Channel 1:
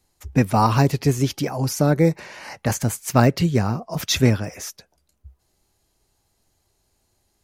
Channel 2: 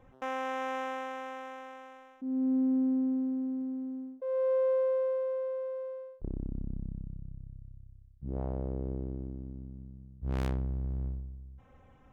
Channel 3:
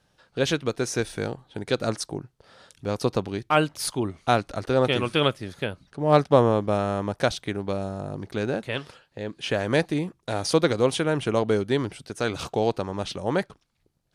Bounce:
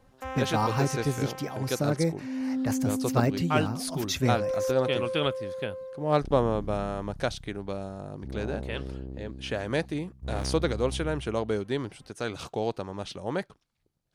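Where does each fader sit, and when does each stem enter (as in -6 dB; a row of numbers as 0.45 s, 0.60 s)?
-9.5 dB, -1.5 dB, -6.0 dB; 0.00 s, 0.00 s, 0.00 s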